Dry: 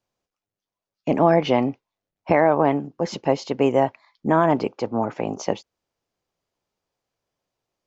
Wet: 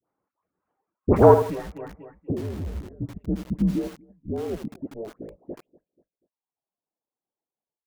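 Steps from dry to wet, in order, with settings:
automatic gain control gain up to 14 dB
high-pass filter sweep 290 Hz → 1,100 Hz, 0:02.73–0:06.43
in parallel at −3.5 dB: soft clipping −12 dBFS, distortion −7 dB
on the sum: low-pass filter sweep 1,400 Hz → 230 Hz, 0:01.84–0:02.70
single-sideband voice off tune −220 Hz 400–2,900 Hz
all-pass dispersion highs, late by 80 ms, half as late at 1,100 Hz
on a send: repeating echo 242 ms, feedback 32%, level −17.5 dB
0:01.34–0:03.16: on the sum: downward compressor 12 to 1, threshold −20 dBFS, peak gain reduction 18.5 dB
reverb reduction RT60 0.76 s
feedback echo at a low word length 80 ms, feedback 35%, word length 5 bits, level −9 dB
level −5 dB

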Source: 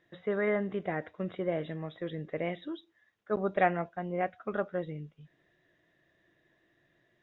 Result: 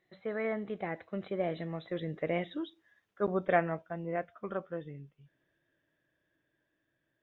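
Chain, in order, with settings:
source passing by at 0:02.45, 23 m/s, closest 27 metres
level +1.5 dB

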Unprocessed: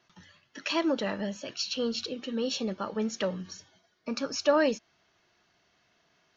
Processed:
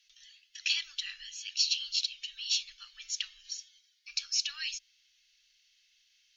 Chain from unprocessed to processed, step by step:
inverse Chebyshev band-stop filter 120–700 Hz, stop band 70 dB
harmonic generator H 2 −44 dB, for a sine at −20 dBFS
level +5.5 dB

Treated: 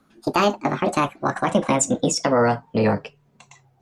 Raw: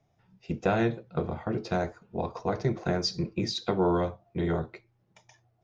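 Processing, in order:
gliding playback speed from 187% → 108%
boost into a limiter +15.5 dB
level −6 dB

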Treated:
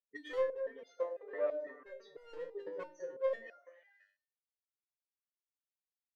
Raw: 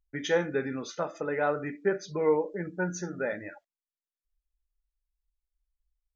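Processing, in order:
gate on every frequency bin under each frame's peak −15 dB strong
formant filter e
high-shelf EQ 3,800 Hz +5 dB
in parallel at −1.5 dB: downward compressor, threshold −43 dBFS, peak gain reduction 17 dB
on the sum: asymmetric clip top −35 dBFS
mid-hump overdrive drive 16 dB, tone 1,900 Hz, clips at −24.5 dBFS
0:00.96–0:01.80: three-way crossover with the lows and the highs turned down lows −22 dB, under 200 Hz, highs −21 dB, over 2,400 Hz
on a send: echo through a band-pass that steps 102 ms, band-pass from 340 Hz, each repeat 0.7 octaves, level −5.5 dB
on the sum: step-sequenced resonator 6 Hz 99–700 Hz
level +5.5 dB

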